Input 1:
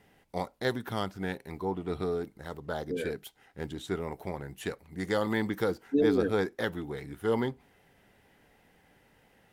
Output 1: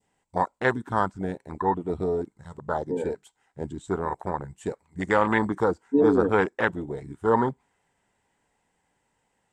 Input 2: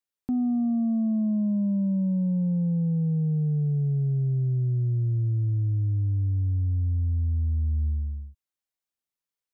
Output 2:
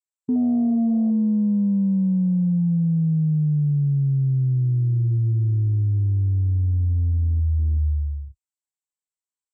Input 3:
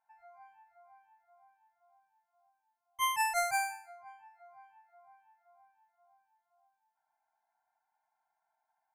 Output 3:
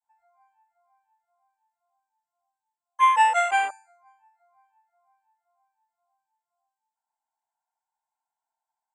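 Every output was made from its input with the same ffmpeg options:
-af "adynamicequalizer=threshold=0.00501:dfrequency=1500:dqfactor=0.89:tfrequency=1500:tqfactor=0.89:attack=5:release=100:ratio=0.375:range=2.5:mode=boostabove:tftype=bell,lowpass=frequency=7800:width_type=q:width=7.6,equalizer=frequency=960:width_type=o:width=0.46:gain=9,afwtdn=0.0355,volume=4.5dB"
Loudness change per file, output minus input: +6.5, +4.5, +10.5 LU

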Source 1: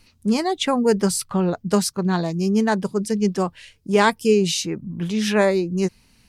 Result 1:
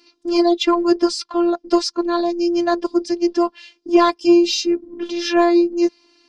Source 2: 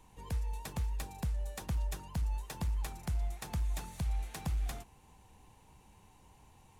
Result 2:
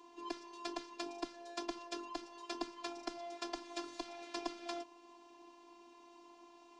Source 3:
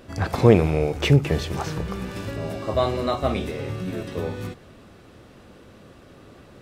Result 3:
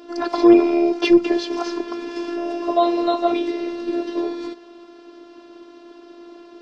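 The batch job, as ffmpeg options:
-af "highpass=frequency=220:width=0.5412,highpass=frequency=220:width=1.3066,equalizer=frequency=290:width_type=q:width=4:gain=9,equalizer=frequency=460:width_type=q:width=4:gain=5,equalizer=frequency=910:width_type=q:width=4:gain=4,equalizer=frequency=2000:width_type=q:width=4:gain=-5,equalizer=frequency=4900:width_type=q:width=4:gain=5,lowpass=frequency=5800:width=0.5412,lowpass=frequency=5800:width=1.3066,afftfilt=real='hypot(re,im)*cos(PI*b)':imag='0':win_size=512:overlap=0.75,acontrast=55"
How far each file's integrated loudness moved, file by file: +3.0, −6.5, +4.0 LU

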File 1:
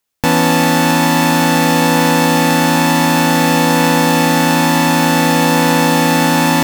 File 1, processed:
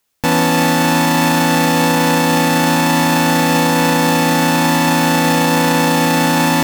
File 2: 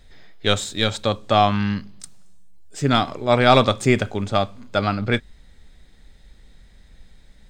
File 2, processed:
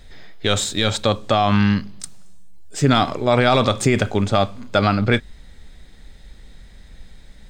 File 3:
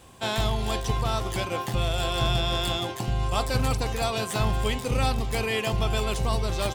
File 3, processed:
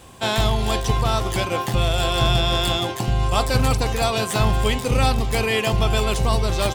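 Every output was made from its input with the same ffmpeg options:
-af "alimiter=level_in=10.5dB:limit=-1dB:release=50:level=0:latency=1,volume=-4.5dB"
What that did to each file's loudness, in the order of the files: −1.5, +1.5, +6.0 LU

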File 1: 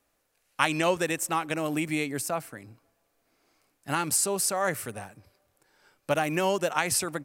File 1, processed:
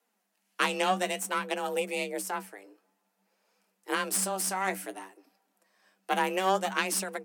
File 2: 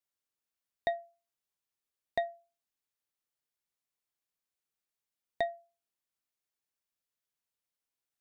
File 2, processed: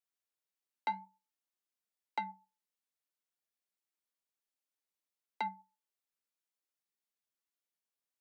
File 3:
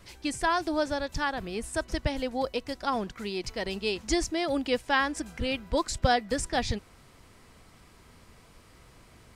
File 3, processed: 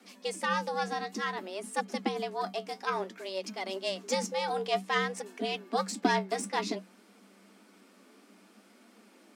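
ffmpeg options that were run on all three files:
-af "aeval=exprs='0.501*(cos(1*acos(clip(val(0)/0.501,-1,1)))-cos(1*PI/2))+0.1*(cos(4*acos(clip(val(0)/0.501,-1,1)))-cos(4*PI/2))':channel_layout=same,flanger=delay=3.2:depth=9.9:regen=56:speed=0.56:shape=triangular,afreqshift=190"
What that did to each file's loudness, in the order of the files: −2.5, −4.0, −3.0 LU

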